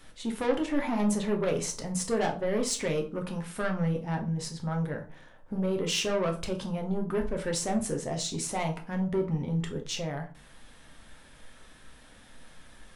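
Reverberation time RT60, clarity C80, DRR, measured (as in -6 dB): 0.40 s, 17.5 dB, 2.5 dB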